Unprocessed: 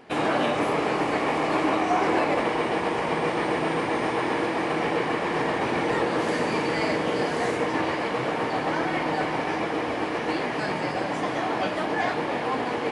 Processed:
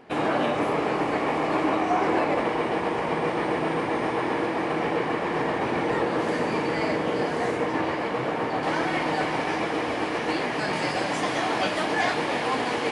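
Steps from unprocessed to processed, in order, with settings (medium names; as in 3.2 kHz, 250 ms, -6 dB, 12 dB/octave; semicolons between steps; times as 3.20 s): treble shelf 2.6 kHz -5 dB, from 8.63 s +3.5 dB, from 10.73 s +9 dB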